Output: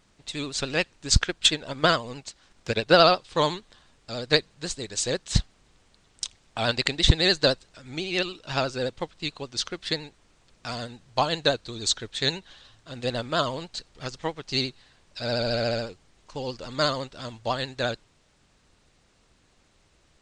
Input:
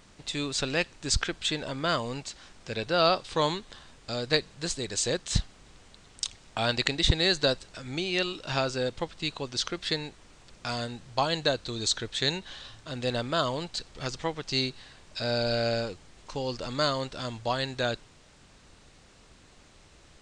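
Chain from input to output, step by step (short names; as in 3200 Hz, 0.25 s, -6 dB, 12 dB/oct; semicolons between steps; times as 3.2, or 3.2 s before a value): 1.1–3.03 transient shaper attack +8 dB, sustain -2 dB; vibrato 14 Hz 70 cents; upward expander 1.5:1, over -44 dBFS; gain +6 dB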